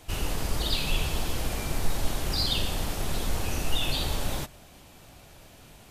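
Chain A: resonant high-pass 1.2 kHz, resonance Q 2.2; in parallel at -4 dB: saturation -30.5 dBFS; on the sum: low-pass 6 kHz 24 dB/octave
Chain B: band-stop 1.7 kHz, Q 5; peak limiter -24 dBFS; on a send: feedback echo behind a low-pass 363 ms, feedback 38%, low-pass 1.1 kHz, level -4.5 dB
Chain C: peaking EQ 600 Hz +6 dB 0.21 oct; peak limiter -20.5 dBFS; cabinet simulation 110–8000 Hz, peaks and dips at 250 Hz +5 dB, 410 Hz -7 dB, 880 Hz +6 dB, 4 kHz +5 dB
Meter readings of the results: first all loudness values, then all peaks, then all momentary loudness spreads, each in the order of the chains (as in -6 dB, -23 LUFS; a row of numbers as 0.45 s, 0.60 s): -28.5 LUFS, -34.5 LUFS, -32.0 LUFS; -14.5 dBFS, -19.5 dBFS, -17.5 dBFS; 7 LU, 16 LU, 22 LU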